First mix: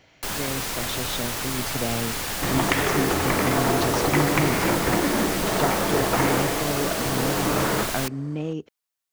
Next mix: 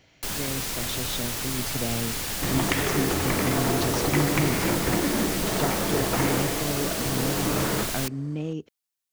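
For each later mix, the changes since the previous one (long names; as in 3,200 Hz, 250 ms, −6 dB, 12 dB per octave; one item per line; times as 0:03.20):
master: add parametric band 990 Hz −5.5 dB 2.6 octaves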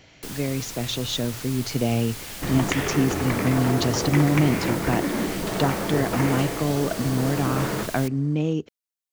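speech +7.0 dB
first sound −6.5 dB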